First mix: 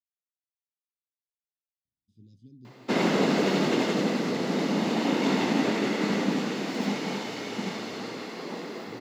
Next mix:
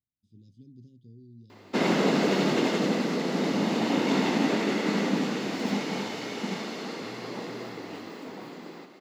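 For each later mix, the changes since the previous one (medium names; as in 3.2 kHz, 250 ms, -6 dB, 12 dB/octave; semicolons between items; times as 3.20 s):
speech: entry -1.85 s; background: entry -1.15 s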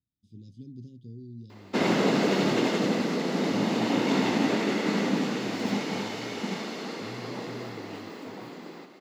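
speech +7.0 dB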